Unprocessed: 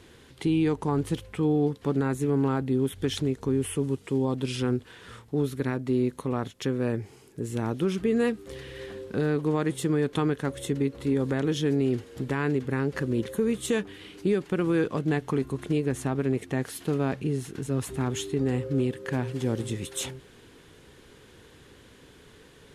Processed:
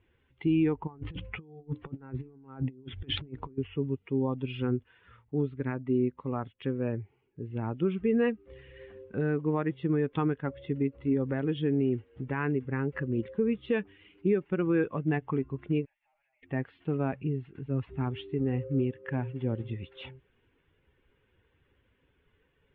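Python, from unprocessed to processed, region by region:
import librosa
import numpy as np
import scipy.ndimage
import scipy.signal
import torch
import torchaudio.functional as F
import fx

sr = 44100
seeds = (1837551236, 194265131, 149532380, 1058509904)

y = fx.chain(x, sr, fx.hum_notches(base_hz=60, count=6),
    fx.over_compress(threshold_db=-32.0, ratio=-0.5), at=(0.87, 3.58))
y = fx.chain(y, sr, fx.cheby_ripple_highpass(hz=590.0, ripple_db=9),
    fx.tube_stage(drive_db=58.0, bias=0.7),
    fx.sustainer(db_per_s=46.0), at=(15.85, 16.43))
y = fx.bin_expand(y, sr, power=1.5)
y = scipy.signal.sosfilt(scipy.signal.butter(8, 3200.0, 'lowpass', fs=sr, output='sos'), y)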